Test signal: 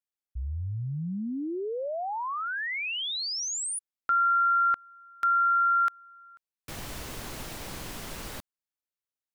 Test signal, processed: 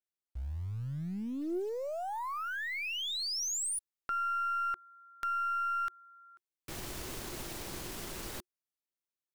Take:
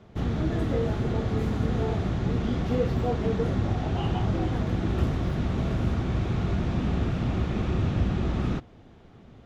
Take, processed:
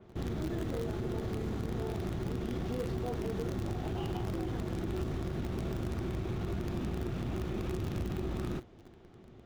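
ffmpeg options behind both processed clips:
-filter_complex "[0:a]equalizer=f=360:t=o:w=0.23:g=10,asplit=2[a][b];[b]acrusher=bits=4:dc=4:mix=0:aa=0.000001,volume=-9dB[c];[a][c]amix=inputs=2:normalize=0,acompressor=threshold=-27dB:ratio=3:attack=2.7:release=58:knee=6,adynamicequalizer=threshold=0.00501:dfrequency=4000:dqfactor=0.7:tfrequency=4000:tqfactor=0.7:attack=5:release=100:ratio=0.375:range=1.5:mode=boostabove:tftype=highshelf,volume=-5.5dB"

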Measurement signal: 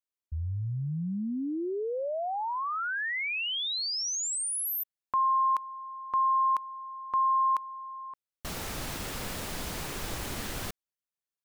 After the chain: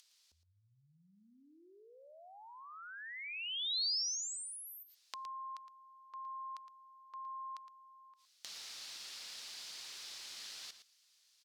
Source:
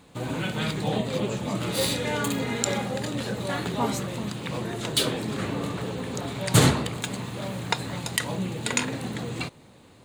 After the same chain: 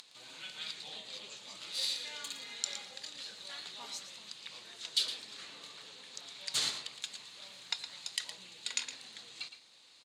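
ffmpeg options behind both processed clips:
-af "acompressor=mode=upward:threshold=-42dB:ratio=2.5:attack=39:release=36:knee=2.83:detection=peak,bandpass=f=4.6k:t=q:w=2:csg=0,aecho=1:1:114:0.282,volume=-2.5dB"

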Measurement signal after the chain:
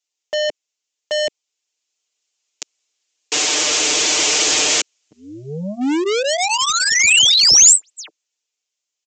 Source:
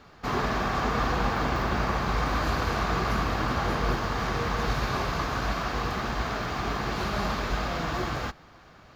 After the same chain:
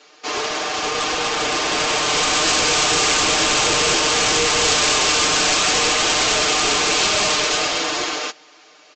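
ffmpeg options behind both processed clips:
-af "aeval=exprs='0.251*(cos(1*acos(clip(val(0)/0.251,-1,1)))-cos(1*PI/2))+0.01*(cos(7*acos(clip(val(0)/0.251,-1,1)))-cos(7*PI/2))':c=same,highpass=f=350:w=0.5412,highpass=f=350:w=1.3066,aecho=1:1:6.6:0.94,dynaudnorm=f=240:g=17:m=15dB,aresample=16000,volume=22dB,asoftclip=hard,volume=-22dB,aresample=44100,aexciter=amount=2.7:drive=2.5:freq=2.3k,equalizer=f=1.1k:w=0.52:g=-6.5,volume=7.5dB"

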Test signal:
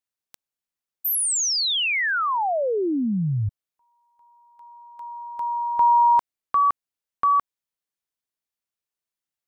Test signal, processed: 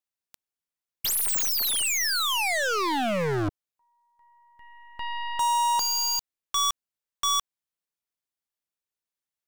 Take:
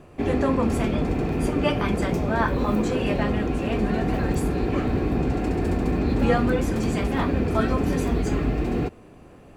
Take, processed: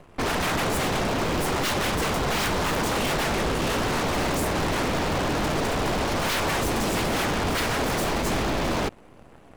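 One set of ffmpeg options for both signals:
-af "aeval=exprs='0.0531*(abs(mod(val(0)/0.0531+3,4)-2)-1)':c=same,aeval=exprs='0.0562*(cos(1*acos(clip(val(0)/0.0562,-1,1)))-cos(1*PI/2))+0.00631*(cos(4*acos(clip(val(0)/0.0562,-1,1)))-cos(4*PI/2))+0.0126*(cos(6*acos(clip(val(0)/0.0562,-1,1)))-cos(6*PI/2))+0.0112*(cos(7*acos(clip(val(0)/0.0562,-1,1)))-cos(7*PI/2))':c=same,volume=5dB"

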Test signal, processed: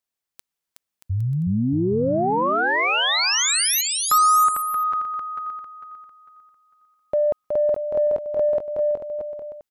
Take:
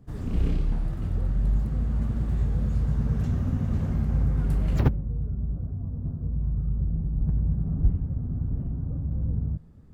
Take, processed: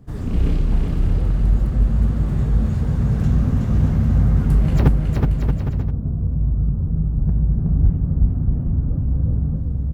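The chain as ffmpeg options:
-filter_complex "[0:a]aecho=1:1:370|629|810.3|937.2|1026:0.631|0.398|0.251|0.158|0.1,asplit=2[a][b];[b]asoftclip=type=tanh:threshold=-17.5dB,volume=-10dB[c];[a][c]amix=inputs=2:normalize=0,volume=4dB"

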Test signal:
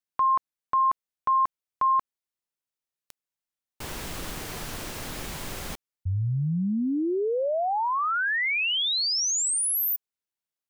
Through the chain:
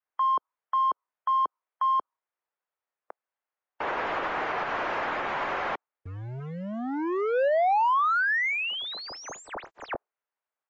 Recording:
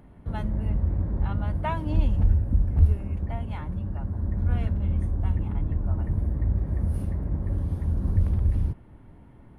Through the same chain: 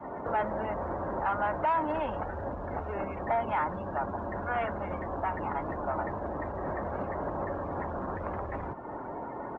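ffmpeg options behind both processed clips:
-filter_complex "[0:a]acrossover=split=420[a][b];[a]acompressor=threshold=-33dB:ratio=2:attack=2.9:release=54:knee=2.83:detection=peak[c];[c][b]amix=inputs=2:normalize=0,asplit=2[d][e];[e]highpass=f=720:p=1,volume=28dB,asoftclip=type=tanh:threshold=-16dB[f];[d][f]amix=inputs=2:normalize=0,lowpass=f=1.1k:p=1,volume=-6dB,adynamicequalizer=threshold=0.00708:dfrequency=460:dqfactor=1.9:tfrequency=460:tqfactor=1.9:attack=5:release=100:ratio=0.375:range=2:mode=cutabove:tftype=bell,aresample=16000,acrusher=bits=5:mode=log:mix=0:aa=0.000001,aresample=44100,alimiter=level_in=2.5dB:limit=-24dB:level=0:latency=1:release=174,volume=-2.5dB,afftdn=nr=16:nf=-47,acrossover=split=390 2400:gain=0.178 1 0.126[g][h][i];[g][h][i]amix=inputs=3:normalize=0,volume=7.5dB"

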